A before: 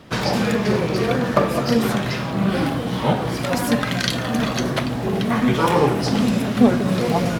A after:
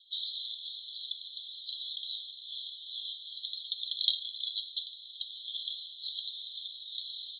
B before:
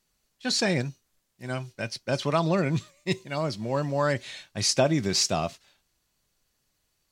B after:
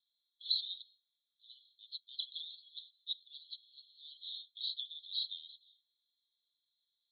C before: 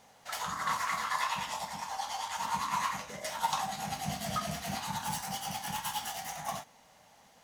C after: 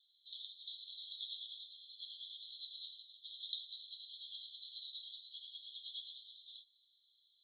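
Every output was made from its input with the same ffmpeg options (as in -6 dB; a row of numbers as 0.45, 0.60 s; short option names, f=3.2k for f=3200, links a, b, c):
-af "asuperpass=centerf=3700:order=12:qfactor=3.7"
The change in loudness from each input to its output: -16.5, -13.5, -13.0 LU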